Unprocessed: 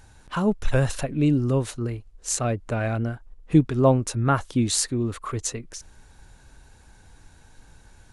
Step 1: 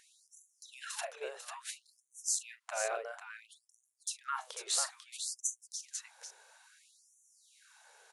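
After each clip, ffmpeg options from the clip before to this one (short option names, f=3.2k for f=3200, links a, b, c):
-filter_complex "[0:a]acompressor=threshold=-25dB:ratio=6,asplit=2[a][b];[b]aecho=0:1:41|495:0.224|0.447[c];[a][c]amix=inputs=2:normalize=0,afftfilt=real='re*gte(b*sr/1024,380*pow(5900/380,0.5+0.5*sin(2*PI*0.59*pts/sr)))':imag='im*gte(b*sr/1024,380*pow(5900/380,0.5+0.5*sin(2*PI*0.59*pts/sr)))':win_size=1024:overlap=0.75,volume=-3dB"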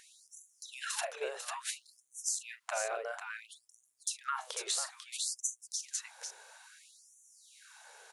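-af "acompressor=threshold=-37dB:ratio=6,volume=5.5dB"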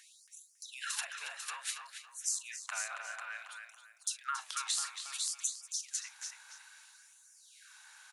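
-filter_complex "[0:a]highpass=f=1.1k:w=0.5412,highpass=f=1.1k:w=1.3066,asplit=2[a][b];[b]adelay=276,lowpass=f=2.8k:p=1,volume=-4dB,asplit=2[c][d];[d]adelay=276,lowpass=f=2.8k:p=1,volume=0.34,asplit=2[e][f];[f]adelay=276,lowpass=f=2.8k:p=1,volume=0.34,asplit=2[g][h];[h]adelay=276,lowpass=f=2.8k:p=1,volume=0.34[i];[c][e][g][i]amix=inputs=4:normalize=0[j];[a][j]amix=inputs=2:normalize=0"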